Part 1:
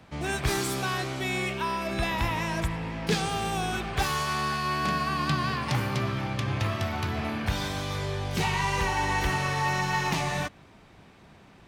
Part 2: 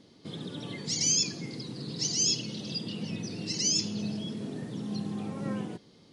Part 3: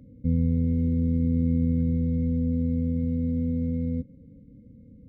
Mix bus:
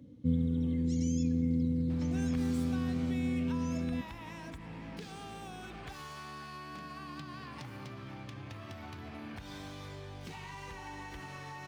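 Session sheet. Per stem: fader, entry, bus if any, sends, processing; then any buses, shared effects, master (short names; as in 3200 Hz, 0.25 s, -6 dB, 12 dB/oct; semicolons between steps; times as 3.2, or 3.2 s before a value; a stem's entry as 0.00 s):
+2.0 dB, 1.90 s, bus A, no send, median filter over 3 samples; compressor 3:1, threshold -38 dBFS, peak gain reduction 13 dB
-14.5 dB, 0.00 s, bus A, no send, bell 4700 Hz -14.5 dB 0.34 oct
-4.0 dB, 0.00 s, no bus, no send, HPF 89 Hz; reverb removal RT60 0.78 s
bus A: 0.0 dB, compressor 3:1, threshold -46 dBFS, peak gain reduction 12 dB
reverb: off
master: bell 290 Hz +7.5 dB 0.27 oct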